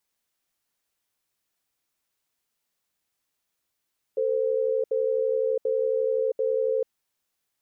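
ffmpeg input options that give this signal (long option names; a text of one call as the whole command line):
ffmpeg -f lavfi -i "aevalsrc='0.0596*(sin(2*PI*447*t)+sin(2*PI*519*t))*clip(min(mod(t,0.74),0.67-mod(t,0.74))/0.005,0,1)':duration=2.66:sample_rate=44100" out.wav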